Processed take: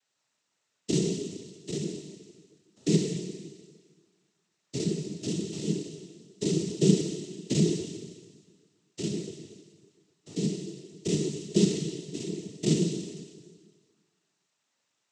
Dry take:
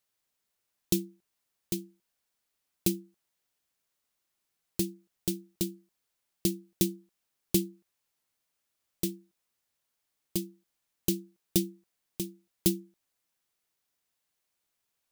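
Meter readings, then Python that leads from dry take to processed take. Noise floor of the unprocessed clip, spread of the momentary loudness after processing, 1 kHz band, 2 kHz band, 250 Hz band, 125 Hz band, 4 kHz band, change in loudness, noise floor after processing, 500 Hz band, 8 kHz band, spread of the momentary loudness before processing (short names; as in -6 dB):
-82 dBFS, 19 LU, n/a, +5.5 dB, +5.5 dB, +9.0 dB, +3.5 dB, +3.0 dB, -79 dBFS, +8.5 dB, +1.5 dB, 11 LU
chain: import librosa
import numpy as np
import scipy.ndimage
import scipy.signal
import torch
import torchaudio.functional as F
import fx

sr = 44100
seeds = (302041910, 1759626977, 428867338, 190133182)

y = fx.spec_steps(x, sr, hold_ms=100)
y = fx.rev_schroeder(y, sr, rt60_s=1.6, comb_ms=31, drr_db=0.0)
y = fx.noise_vocoder(y, sr, seeds[0], bands=12)
y = y * 10.0 ** (6.5 / 20.0)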